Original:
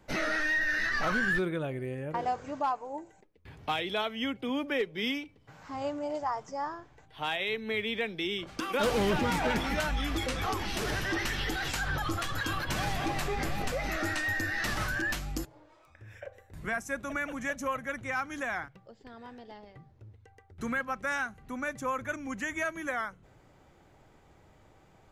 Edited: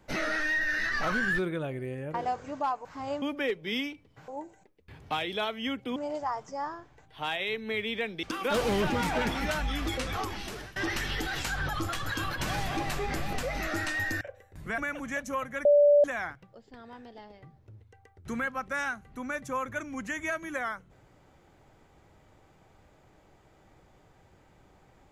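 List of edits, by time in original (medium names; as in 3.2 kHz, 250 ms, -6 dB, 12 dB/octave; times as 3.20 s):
2.85–4.53 s: swap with 5.59–5.96 s
8.23–8.52 s: delete
10.17–11.05 s: fade out equal-power, to -22 dB
14.50–16.19 s: delete
16.76–17.11 s: delete
17.98–18.37 s: bleep 582 Hz -16 dBFS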